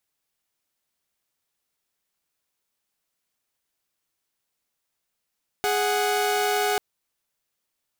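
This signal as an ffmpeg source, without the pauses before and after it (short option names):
-f lavfi -i "aevalsrc='0.0841*((2*mod(415.3*t,1)-1)+(2*mod(739.99*t,1)-1))':d=1.14:s=44100"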